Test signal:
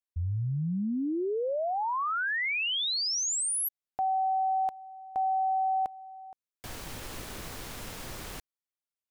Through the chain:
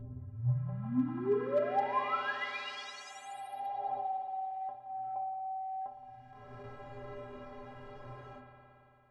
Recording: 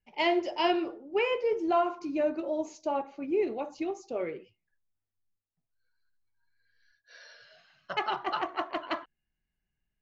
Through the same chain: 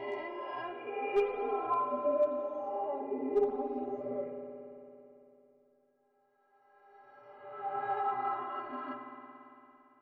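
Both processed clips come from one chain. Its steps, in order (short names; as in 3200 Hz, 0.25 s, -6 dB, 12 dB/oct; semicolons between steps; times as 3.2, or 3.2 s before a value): spectral swells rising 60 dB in 2.54 s; reverb removal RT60 1 s; LPF 1100 Hz 12 dB/oct; in parallel at -6.5 dB: soft clip -21.5 dBFS; on the sum: metallic resonator 120 Hz, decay 0.44 s, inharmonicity 0.03; one-sided clip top -29 dBFS; spectral noise reduction 6 dB; spring tank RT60 3.1 s, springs 56 ms, chirp 55 ms, DRR 3.5 dB; gain +6 dB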